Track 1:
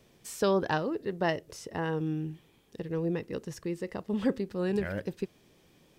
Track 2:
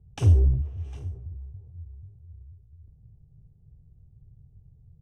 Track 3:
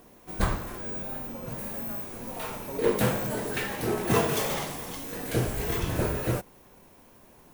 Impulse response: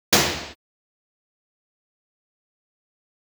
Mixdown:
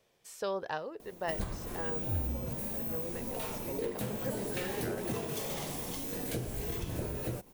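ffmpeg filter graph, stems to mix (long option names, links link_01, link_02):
-filter_complex "[0:a]lowshelf=frequency=390:width_type=q:width=1.5:gain=-7.5,volume=-7.5dB[link_01];[1:a]adelay=1850,volume=-17.5dB[link_02];[2:a]equalizer=frequency=1400:width_type=o:width=1.7:gain=-7,acompressor=threshold=-33dB:ratio=10,adelay=1000,volume=0.5dB[link_03];[link_01][link_02][link_03]amix=inputs=3:normalize=0"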